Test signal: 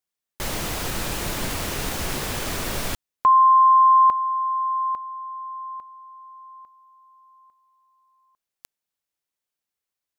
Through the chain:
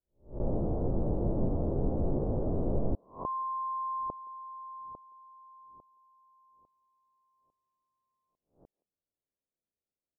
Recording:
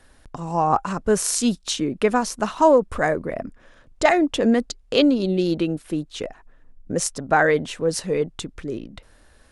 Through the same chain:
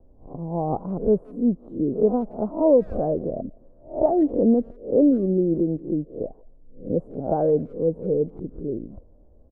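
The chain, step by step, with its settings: reverse spectral sustain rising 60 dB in 0.34 s; inverse Chebyshev low-pass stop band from 2.1 kHz, stop band 60 dB; speakerphone echo 170 ms, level -27 dB

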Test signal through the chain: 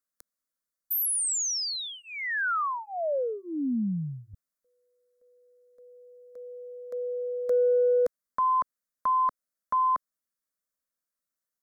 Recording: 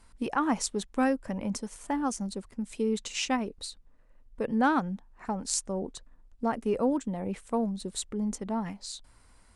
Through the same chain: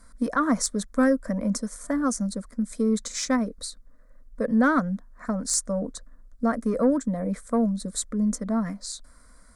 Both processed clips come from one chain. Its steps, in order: in parallel at -5 dB: sine folder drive 8 dB, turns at -9 dBFS; on the sum: static phaser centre 560 Hz, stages 8; trim -2.5 dB

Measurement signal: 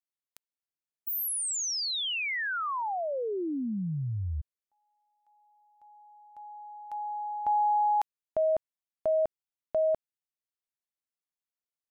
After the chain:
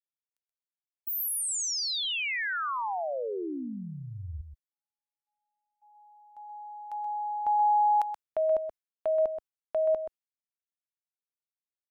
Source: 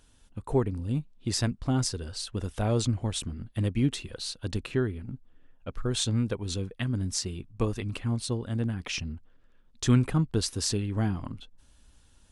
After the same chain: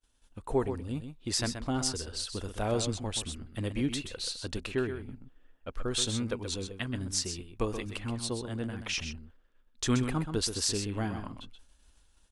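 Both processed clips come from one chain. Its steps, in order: expander -52 dBFS; peaking EQ 130 Hz -9 dB 1.9 oct; delay 128 ms -8.5 dB

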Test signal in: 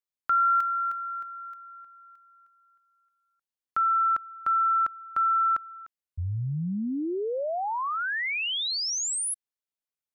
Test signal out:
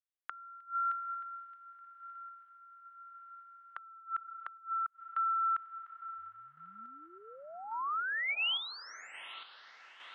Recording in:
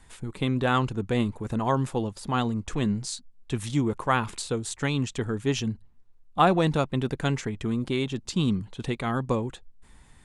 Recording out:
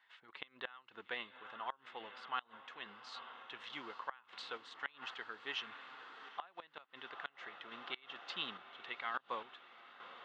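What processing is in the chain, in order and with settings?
low-pass 3.2 kHz 24 dB/octave; echo that smears into a reverb 860 ms, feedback 73%, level -15.5 dB; random-step tremolo 3.5 Hz; high-pass 1.4 kHz 12 dB/octave; band-stop 2.4 kHz, Q 9.2; inverted gate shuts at -26 dBFS, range -25 dB

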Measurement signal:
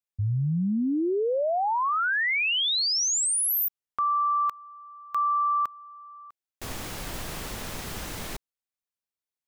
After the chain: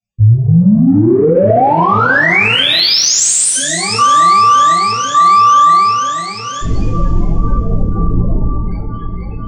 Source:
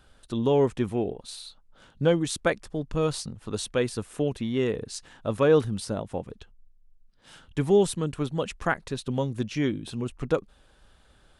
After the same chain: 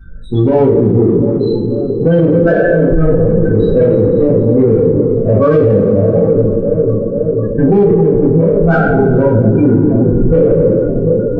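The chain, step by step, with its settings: spectral sustain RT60 1.59 s; low-pass 9 kHz 24 dB/octave; bass shelf 280 Hz +5.5 dB; de-hum 250.9 Hz, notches 34; on a send: echo whose repeats swap between lows and highs 245 ms, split 970 Hz, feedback 90%, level -10 dB; on the sum: loudest bins only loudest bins 16; in parallel at -9 dB: saturation -23 dBFS; on the sum: two-slope reverb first 0.29 s, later 3 s, from -22 dB, DRR -7 dB; loudness maximiser +8 dB; trim -1 dB

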